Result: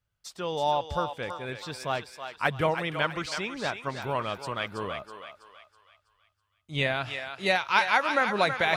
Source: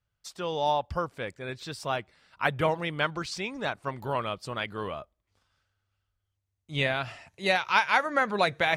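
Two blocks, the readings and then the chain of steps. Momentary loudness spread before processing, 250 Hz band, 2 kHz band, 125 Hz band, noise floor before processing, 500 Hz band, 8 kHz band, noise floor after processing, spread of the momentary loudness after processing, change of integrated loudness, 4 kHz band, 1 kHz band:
13 LU, 0.0 dB, +1.0 dB, 0.0 dB, -82 dBFS, +0.5 dB, +1.0 dB, -77 dBFS, 13 LU, +0.5 dB, +1.0 dB, +0.5 dB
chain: thinning echo 0.325 s, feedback 46%, high-pass 730 Hz, level -6.5 dB

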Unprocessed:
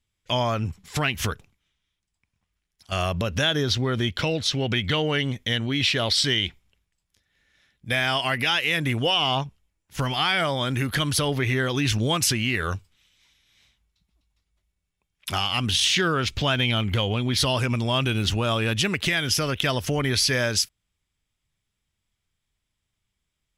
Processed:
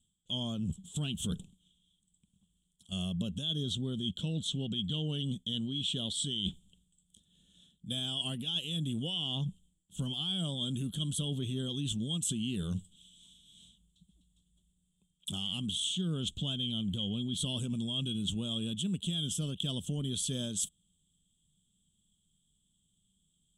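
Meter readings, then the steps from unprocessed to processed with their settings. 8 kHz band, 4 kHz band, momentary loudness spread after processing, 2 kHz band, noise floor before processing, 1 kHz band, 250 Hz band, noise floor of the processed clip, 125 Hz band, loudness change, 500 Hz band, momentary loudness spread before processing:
-9.0 dB, -9.5 dB, 5 LU, -28.0 dB, -80 dBFS, -27.0 dB, -7.0 dB, -76 dBFS, -9.5 dB, -11.0 dB, -18.0 dB, 7 LU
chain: EQ curve 120 Hz 0 dB, 180 Hz +15 dB, 280 Hz +3 dB, 720 Hz -11 dB, 1500 Hz -18 dB, 2100 Hz -30 dB, 3300 Hz +11 dB, 4900 Hz -17 dB, 8000 Hz +15 dB, 12000 Hz -5 dB; reverse; compressor 6:1, threshold -33 dBFS, peak gain reduction 19.5 dB; reverse

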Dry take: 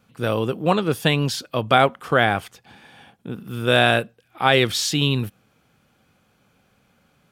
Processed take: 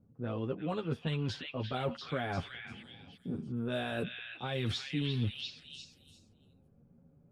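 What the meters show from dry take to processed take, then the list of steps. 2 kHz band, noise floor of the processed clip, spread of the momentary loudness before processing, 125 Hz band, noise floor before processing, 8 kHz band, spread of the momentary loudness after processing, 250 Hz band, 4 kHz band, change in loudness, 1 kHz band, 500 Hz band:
-19.5 dB, -65 dBFS, 12 LU, -11.0 dB, -64 dBFS, -24.5 dB, 13 LU, -12.0 dB, -16.5 dB, -16.5 dB, -20.5 dB, -17.0 dB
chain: low-pass opened by the level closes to 460 Hz, open at -12.5 dBFS; low shelf 440 Hz +8.5 dB; limiter -6.5 dBFS, peak gain reduction 6.5 dB; reverse; compressor 6:1, threshold -26 dBFS, peak gain reduction 14 dB; reverse; chorus voices 4, 0.38 Hz, delay 10 ms, depth 3 ms; on a send: delay with a stepping band-pass 0.346 s, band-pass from 2500 Hz, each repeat 0.7 oct, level 0 dB; on the sum: gain -3 dB

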